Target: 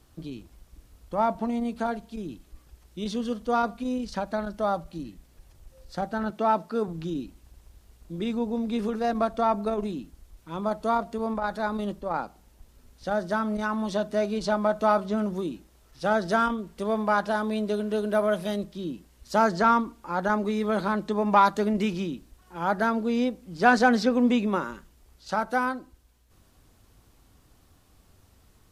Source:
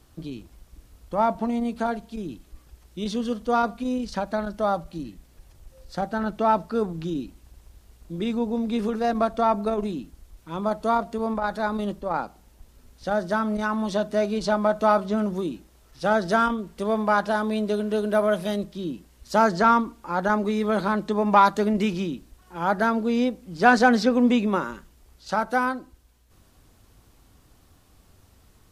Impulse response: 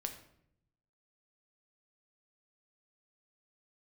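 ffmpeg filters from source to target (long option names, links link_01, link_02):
-filter_complex "[0:a]asettb=1/sr,asplit=3[link_01][link_02][link_03];[link_01]atrim=end=6.304[link_04];[link_02]atrim=start=6.3:end=6.88,asetpts=PTS-STARTPTS,afade=type=in:duration=0.004:curve=qsin,afade=type=out:start_time=0.576:duration=0.004:curve=qsin,highpass=160[link_05];[link_03]atrim=start=6.876[link_06];[link_04][link_05]acrossfade=duration=0.004:curve1=hsin:curve2=qsin[link_07];[link_07][link_06]acrossfade=duration=0.004:curve1=qsin:curve2=hsin,volume=-2.5dB"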